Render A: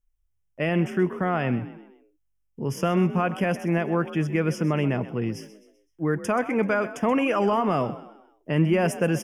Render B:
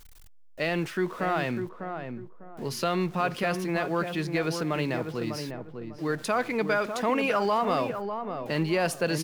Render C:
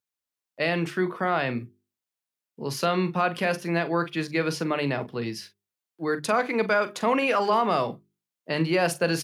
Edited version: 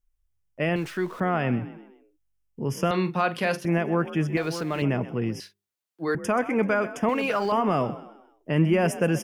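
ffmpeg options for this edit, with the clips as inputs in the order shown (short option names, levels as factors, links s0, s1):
-filter_complex "[1:a]asplit=3[s0][s1][s2];[2:a]asplit=2[s3][s4];[0:a]asplit=6[s5][s6][s7][s8][s9][s10];[s5]atrim=end=0.762[s11];[s0]atrim=start=0.758:end=1.202[s12];[s6]atrim=start=1.198:end=2.912[s13];[s3]atrim=start=2.908:end=3.652[s14];[s7]atrim=start=3.648:end=4.372[s15];[s1]atrim=start=4.368:end=4.822[s16];[s8]atrim=start=4.818:end=5.402[s17];[s4]atrim=start=5.398:end=6.152[s18];[s9]atrim=start=6.148:end=7.092[s19];[s2]atrim=start=7.088:end=7.522[s20];[s10]atrim=start=7.518[s21];[s11][s12]acrossfade=d=0.004:c1=hsin:c2=hsin[s22];[s22][s13]acrossfade=d=0.004:c1=hsin:c2=hsin[s23];[s23][s14]acrossfade=d=0.004:c1=hsin:c2=hsin[s24];[s24][s15]acrossfade=d=0.004:c1=hsin:c2=hsin[s25];[s25][s16]acrossfade=d=0.004:c1=hsin:c2=hsin[s26];[s26][s17]acrossfade=d=0.004:c1=hsin:c2=hsin[s27];[s27][s18]acrossfade=d=0.004:c1=hsin:c2=hsin[s28];[s28][s19]acrossfade=d=0.004:c1=hsin:c2=hsin[s29];[s29][s20]acrossfade=d=0.004:c1=hsin:c2=hsin[s30];[s30][s21]acrossfade=d=0.004:c1=hsin:c2=hsin"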